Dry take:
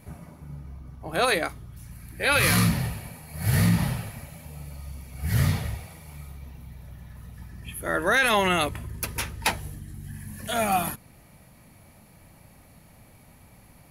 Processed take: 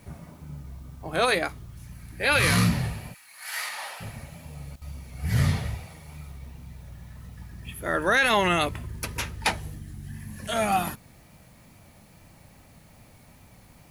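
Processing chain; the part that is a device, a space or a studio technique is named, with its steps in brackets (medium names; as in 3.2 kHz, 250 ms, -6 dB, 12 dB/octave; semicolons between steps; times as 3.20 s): 3.13–4.00 s: high-pass 1.4 kHz -> 580 Hz 24 dB/octave; worn cassette (low-pass 9.6 kHz 12 dB/octave; wow and flutter; level dips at 4.76 s, 54 ms -18 dB; white noise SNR 34 dB)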